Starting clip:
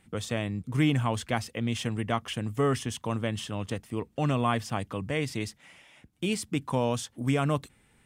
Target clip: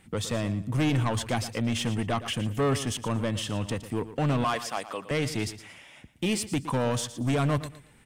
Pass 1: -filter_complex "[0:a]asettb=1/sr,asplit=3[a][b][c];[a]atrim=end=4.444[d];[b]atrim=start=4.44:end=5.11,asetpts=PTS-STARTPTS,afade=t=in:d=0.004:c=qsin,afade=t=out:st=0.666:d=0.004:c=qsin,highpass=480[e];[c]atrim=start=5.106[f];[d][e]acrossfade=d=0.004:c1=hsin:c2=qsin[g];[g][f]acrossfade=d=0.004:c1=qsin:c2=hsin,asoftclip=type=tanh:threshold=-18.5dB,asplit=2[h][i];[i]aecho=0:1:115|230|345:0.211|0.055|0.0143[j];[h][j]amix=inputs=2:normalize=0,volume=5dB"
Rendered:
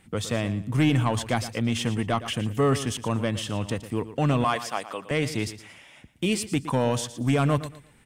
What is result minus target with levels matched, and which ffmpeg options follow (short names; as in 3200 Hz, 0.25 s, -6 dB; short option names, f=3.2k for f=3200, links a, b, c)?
soft clip: distortion -8 dB
-filter_complex "[0:a]asettb=1/sr,asplit=3[a][b][c];[a]atrim=end=4.444[d];[b]atrim=start=4.44:end=5.11,asetpts=PTS-STARTPTS,afade=t=in:d=0.004:c=qsin,afade=t=out:st=0.666:d=0.004:c=qsin,highpass=480[e];[c]atrim=start=5.106[f];[d][e]acrossfade=d=0.004:c1=hsin:c2=qsin[g];[g][f]acrossfade=d=0.004:c1=qsin:c2=hsin,asoftclip=type=tanh:threshold=-26dB,asplit=2[h][i];[i]aecho=0:1:115|230|345:0.211|0.055|0.0143[j];[h][j]amix=inputs=2:normalize=0,volume=5dB"